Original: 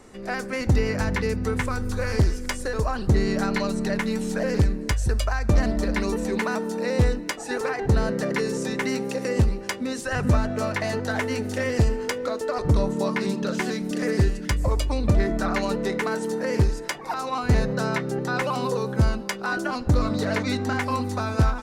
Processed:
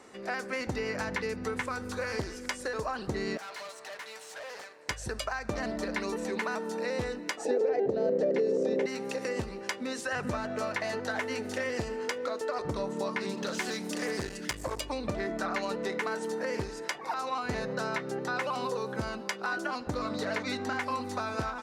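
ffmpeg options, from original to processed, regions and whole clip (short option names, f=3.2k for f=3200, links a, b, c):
-filter_complex "[0:a]asettb=1/sr,asplit=3[a][b][c];[a]atrim=end=3.374[d];[b]atrim=start=3.37:end=4.89,asetpts=PTS-STARTPTS,afade=t=in:d=0.004:c=qsin,afade=t=out:st=1.516:d=0.004:c=qsin,highpass=f=580:w=0.5412,highpass=f=580:w=1.3066,aeval=exprs='(tanh(79.4*val(0)+0.75)-tanh(0.75))/79.4':c=same[e];[c]atrim=start=4.886[f];[d][e]acrossfade=d=0.004:c1=hsin:c2=qsin[g];[g][f]acrossfade=d=0.004:c1=qsin:c2=hsin,asettb=1/sr,asplit=3[h][i][j];[h]atrim=end=7.454[k];[i]atrim=start=7.45:end=8.86,asetpts=PTS-STARTPTS,afade=t=in:d=0.004:c=qsin,afade=t=out:st=1.406:d=0.004:c=qsin,lowshelf=f=780:t=q:w=3:g=12,acompressor=threshold=-11dB:ratio=3:attack=3.2:release=140:knee=1:detection=peak,highpass=180,lowpass=6.3k[l];[j]atrim=start=8.856[m];[k][l]acrossfade=d=0.004:c1=hsin:c2=qsin[n];[n][m]acrossfade=d=0.004:c1=qsin:c2=hsin,asettb=1/sr,asplit=3[o][p][q];[o]atrim=end=13.374[r];[p]atrim=start=13.37:end=14.81,asetpts=PTS-STARTPTS,afade=t=in:d=0.004:c=qsin,afade=t=out:st=1.436:d=0.004:c=qsin,highshelf=f=4.5k:g=9,aeval=exprs='clip(val(0),-1,0.0596)':c=same[s];[q]atrim=start=14.806[t];[r][s]acrossfade=d=0.004:c1=hsin:c2=qsin[u];[u][t]acrossfade=d=0.004:c1=qsin:c2=hsin,highpass=f=480:p=1,highshelf=f=8.5k:g=-9,acompressor=threshold=-32dB:ratio=2"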